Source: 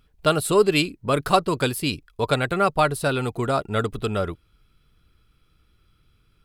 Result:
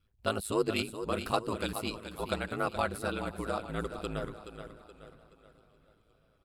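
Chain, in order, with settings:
repeating echo 425 ms, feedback 43%, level −10 dB
ring modulation 54 Hz
feedback echo with a swinging delay time 514 ms, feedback 58%, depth 125 cents, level −23 dB
level −9 dB

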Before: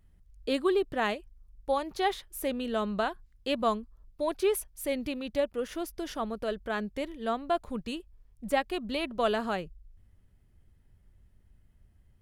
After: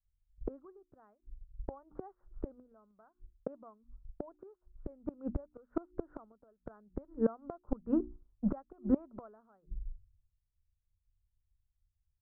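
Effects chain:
noise gate −51 dBFS, range −11 dB
Chebyshev low-pass filter 1,400 Hz, order 5
mains-hum notches 60/120/180/240/300/360 Hz
in parallel at +3 dB: downward compressor 10 to 1, threshold −41 dBFS, peak gain reduction 19 dB
on the sum: gate with flip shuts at −25 dBFS, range −25 dB
multiband upward and downward expander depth 100%

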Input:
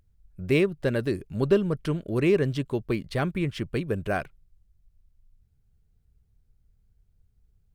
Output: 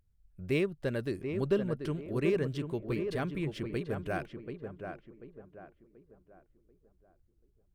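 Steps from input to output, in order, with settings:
tape delay 736 ms, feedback 42%, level −5 dB, low-pass 1,500 Hz
level −7.5 dB

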